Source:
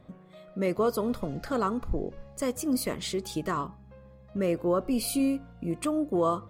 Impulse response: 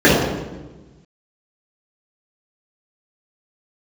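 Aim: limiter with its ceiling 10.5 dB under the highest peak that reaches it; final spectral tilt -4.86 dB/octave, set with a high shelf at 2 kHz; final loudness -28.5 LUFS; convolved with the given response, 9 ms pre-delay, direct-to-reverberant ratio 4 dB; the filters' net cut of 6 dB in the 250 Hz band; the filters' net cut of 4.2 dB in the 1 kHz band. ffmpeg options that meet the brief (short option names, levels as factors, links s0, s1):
-filter_complex "[0:a]equalizer=f=250:t=o:g=-7.5,equalizer=f=1000:t=o:g=-7,highshelf=f=2000:g=7.5,alimiter=limit=0.0631:level=0:latency=1,asplit=2[s0][s1];[1:a]atrim=start_sample=2205,adelay=9[s2];[s1][s2]afir=irnorm=-1:irlink=0,volume=0.02[s3];[s0][s3]amix=inputs=2:normalize=0,volume=1.41"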